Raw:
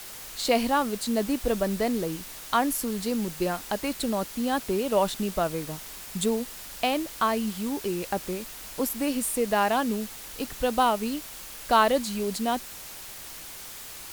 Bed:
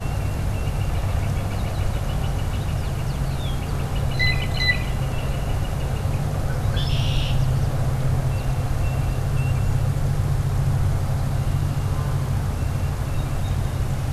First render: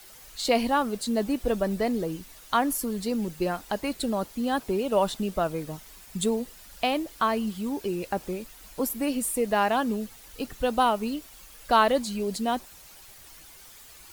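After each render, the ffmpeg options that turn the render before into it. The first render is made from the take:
-af "afftdn=nr=10:nf=-42"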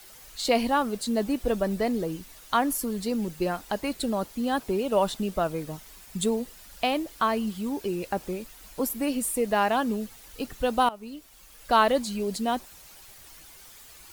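-filter_complex "[0:a]asplit=2[s0][s1];[s0]atrim=end=10.89,asetpts=PTS-STARTPTS,afade=t=out:st=10.886:d=0.004:c=hsin:silence=0.141254[s2];[s1]atrim=start=10.89,asetpts=PTS-STARTPTS,afade=t=in:d=0.91:silence=0.141254[s3];[s2][s3]concat=n=2:v=0:a=1"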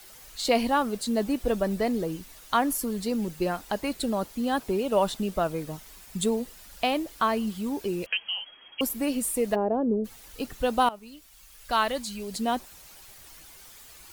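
-filter_complex "[0:a]asettb=1/sr,asplit=3[s0][s1][s2];[s0]atrim=end=8.064[s3];[s1]atrim=start=8.06:end=8.81,asetpts=PTS-STARTPTS,afade=t=in:d=0.004:c=qsin,afade=t=out:st=0.746:d=0.004:c=qsin,lowpass=f=2800:t=q:w=0.5098,lowpass=f=2800:t=q:w=0.6013,lowpass=f=2800:t=q:w=0.9,lowpass=f=2800:t=q:w=2.563,afreqshift=-3300[s4];[s2]atrim=start=8.806[s5];[s3][s4]acrossfade=d=0.004:c1=hsin:c2=qsin[s6];[s6][s5]acrossfade=d=0.004:c1=qsin:c2=hsin,asplit=3[s7][s8][s9];[s7]afade=t=out:st=9.54:d=0.02[s10];[s8]lowpass=f=470:t=q:w=2,afade=t=in:st=9.54:d=0.02,afade=t=out:st=10.04:d=0.02[s11];[s9]afade=t=in:st=10.04:d=0.02[s12];[s10][s11][s12]amix=inputs=3:normalize=0,asettb=1/sr,asplit=3[s13][s14][s15];[s13]atrim=end=10.994[s16];[s14]atrim=start=10.99:end=12.34,asetpts=PTS-STARTPTS,afade=t=in:d=0.004:c=qsin,afade=t=out:st=1.346:d=0.004:c=qsin,equalizer=f=380:w=0.41:g=-8[s17];[s15]atrim=start=12.336[s18];[s16][s17]acrossfade=d=0.004:c1=hsin:c2=qsin[s19];[s19][s18]acrossfade=d=0.004:c1=qsin:c2=hsin"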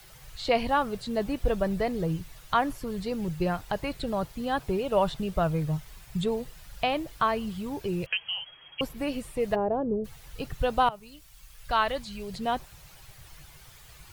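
-filter_complex "[0:a]acrossover=split=4200[s0][s1];[s1]acompressor=threshold=0.00251:ratio=4:attack=1:release=60[s2];[s0][s2]amix=inputs=2:normalize=0,lowshelf=f=180:t=q:w=3:g=7.5"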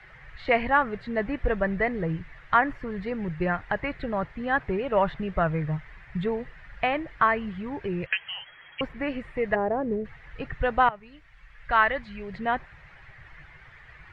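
-af "acrusher=bits=8:mode=log:mix=0:aa=0.000001,lowpass=f=1900:t=q:w=4.3"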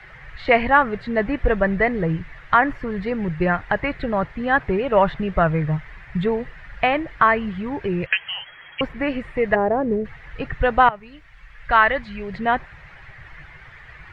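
-af "volume=2.11,alimiter=limit=0.708:level=0:latency=1"

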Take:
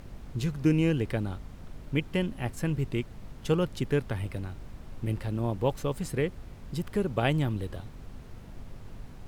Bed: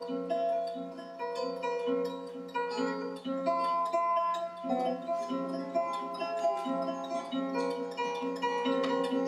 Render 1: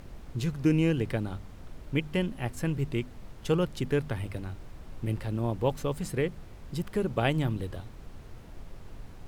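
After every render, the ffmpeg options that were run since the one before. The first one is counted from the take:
-af "bandreject=f=50:t=h:w=4,bandreject=f=100:t=h:w=4,bandreject=f=150:t=h:w=4,bandreject=f=200:t=h:w=4,bandreject=f=250:t=h:w=4"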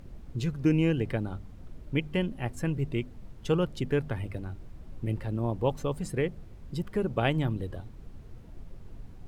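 -af "afftdn=nr=8:nf=-47"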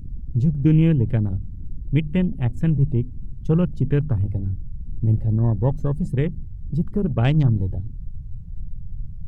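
-af "afwtdn=0.01,bass=f=250:g=14,treble=f=4000:g=7"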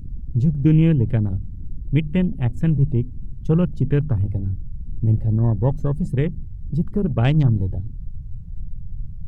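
-af "volume=1.12"

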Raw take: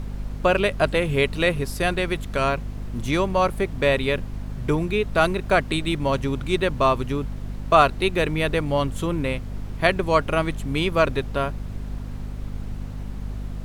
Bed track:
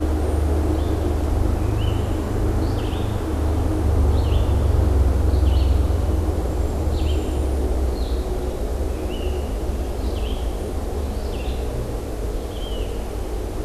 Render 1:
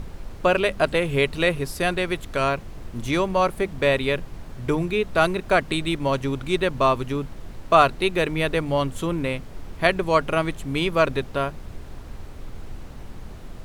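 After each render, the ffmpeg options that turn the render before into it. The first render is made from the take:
-af "bandreject=f=50:t=h:w=6,bandreject=f=100:t=h:w=6,bandreject=f=150:t=h:w=6,bandreject=f=200:t=h:w=6,bandreject=f=250:t=h:w=6"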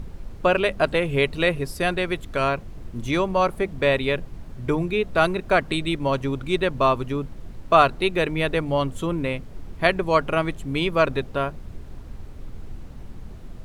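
-af "afftdn=nr=6:nf=-39"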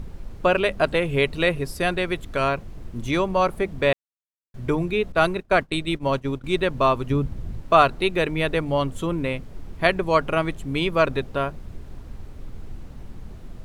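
-filter_complex "[0:a]asettb=1/sr,asplit=3[s0][s1][s2];[s0]atrim=end=5.124[s3];[s1]atrim=start=5.12:end=6.44,asetpts=PTS-STARTPTS,afade=t=in:d=0.004:c=qsin,afade=t=out:st=1.316:d=0.004:c=qsin,agate=range=0.0224:threshold=0.0631:ratio=3:release=100:detection=peak[s4];[s2]atrim=start=6.436[s5];[s3][s4]acrossfade=d=0.004:c1=hsin:c2=qsin[s6];[s6][s5]acrossfade=d=0.004:c1=qsin:c2=hsin,asettb=1/sr,asplit=3[s7][s8][s9];[s7]atrim=end=7.104[s10];[s8]atrim=start=7.1:end=7.61,asetpts=PTS-STARTPTS,afade=t=in:d=0.004:c=qsin,afade=t=out:st=0.506:d=0.004:c=qsin,equalizer=f=78:t=o:w=2.8:g=10.5[s11];[s9]atrim=start=7.606[s12];[s10][s11]acrossfade=d=0.004:c1=hsin:c2=qsin[s13];[s13][s12]acrossfade=d=0.004:c1=qsin:c2=hsin,asplit=3[s14][s15][s16];[s14]atrim=end=3.93,asetpts=PTS-STARTPTS,afade=t=out:st=3.926:d=0.004:c=hsin[s17];[s15]atrim=start=3.93:end=4.54,asetpts=PTS-STARTPTS,volume=0[s18];[s16]atrim=start=4.54,asetpts=PTS-STARTPTS,afade=t=in:d=0.004:c=hsin[s19];[s17][s18][s19]concat=n=3:v=0:a=1"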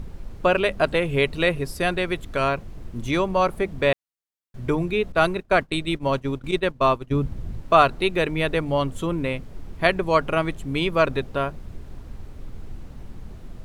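-filter_complex "[0:a]asettb=1/sr,asplit=3[s0][s1][s2];[s0]atrim=end=6.514[s3];[s1]atrim=start=6.51:end=7.14,asetpts=PTS-STARTPTS,afade=t=in:d=0.004:c=qsin,afade=t=out:st=0.626:d=0.004:c=qsin,agate=range=0.0224:threshold=0.0891:ratio=3:release=100:detection=peak[s4];[s2]atrim=start=7.136[s5];[s3][s4]acrossfade=d=0.004:c1=hsin:c2=qsin[s6];[s6][s5]acrossfade=d=0.004:c1=qsin:c2=hsin"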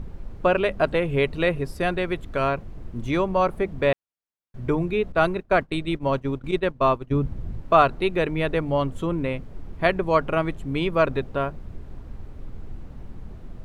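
-af "highshelf=f=3100:g=-10"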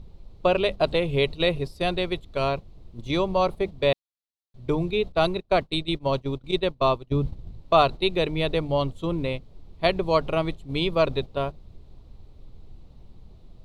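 -af "agate=range=0.355:threshold=0.0447:ratio=16:detection=peak,equalizer=f=250:t=o:w=0.67:g=-4,equalizer=f=1600:t=o:w=0.67:g=-11,equalizer=f=4000:t=o:w=0.67:g=11"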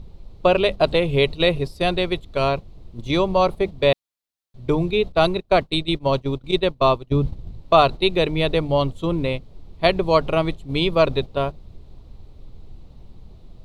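-af "volume=1.68,alimiter=limit=0.794:level=0:latency=1"

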